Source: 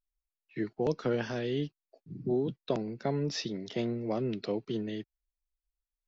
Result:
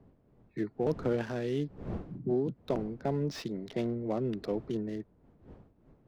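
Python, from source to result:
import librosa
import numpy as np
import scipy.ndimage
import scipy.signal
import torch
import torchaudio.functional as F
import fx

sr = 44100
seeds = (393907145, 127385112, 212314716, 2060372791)

y = fx.wiener(x, sr, points=15)
y = fx.dmg_wind(y, sr, seeds[0], corner_hz=280.0, level_db=-49.0)
y = fx.slew_limit(y, sr, full_power_hz=40.0)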